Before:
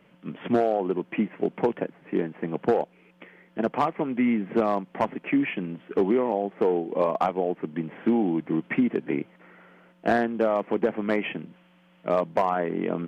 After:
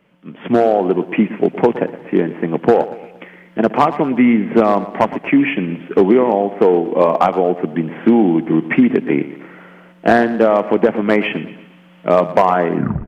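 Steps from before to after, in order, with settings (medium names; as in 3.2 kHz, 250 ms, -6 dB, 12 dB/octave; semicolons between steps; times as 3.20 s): tape stop on the ending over 0.34 s; level rider gain up to 14 dB; on a send: feedback delay 117 ms, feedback 46%, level -15 dB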